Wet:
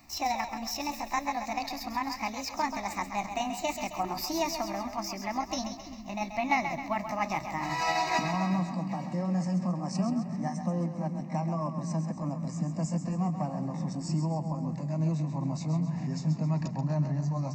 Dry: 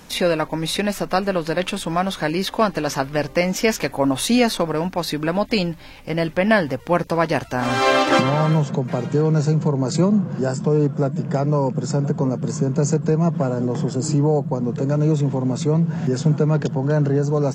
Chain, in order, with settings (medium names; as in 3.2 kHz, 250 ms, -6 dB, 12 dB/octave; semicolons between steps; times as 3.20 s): pitch bend over the whole clip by +6.5 st ending unshifted; static phaser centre 2.2 kHz, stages 8; two-band feedback delay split 370 Hz, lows 340 ms, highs 133 ms, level -8.5 dB; trim -8 dB